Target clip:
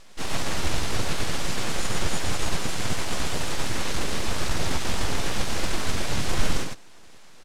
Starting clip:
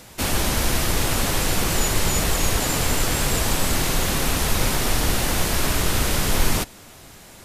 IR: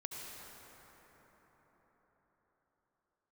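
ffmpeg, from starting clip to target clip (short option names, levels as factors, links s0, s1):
-filter_complex "[0:a]aecho=1:1:106:0.631,aeval=exprs='abs(val(0))':c=same,asplit=3[s0][s1][s2];[s1]asetrate=55563,aresample=44100,atempo=0.793701,volume=0.794[s3];[s2]asetrate=66075,aresample=44100,atempo=0.66742,volume=0.891[s4];[s0][s3][s4]amix=inputs=3:normalize=0,lowpass=7300,volume=0.398"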